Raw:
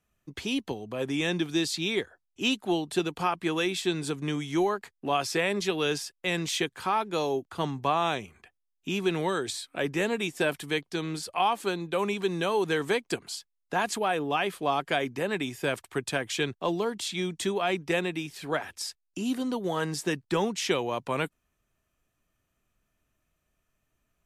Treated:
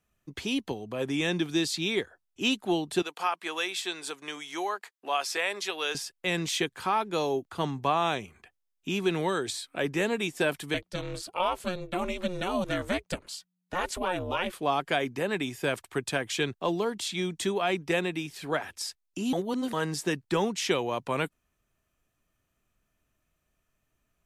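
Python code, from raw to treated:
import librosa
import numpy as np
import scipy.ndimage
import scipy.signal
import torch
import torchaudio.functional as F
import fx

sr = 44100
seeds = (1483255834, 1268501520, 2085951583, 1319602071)

y = fx.highpass(x, sr, hz=640.0, slope=12, at=(3.02, 5.95))
y = fx.ring_mod(y, sr, carrier_hz=180.0, at=(10.74, 14.53))
y = fx.edit(y, sr, fx.reverse_span(start_s=19.33, length_s=0.4), tone=tone)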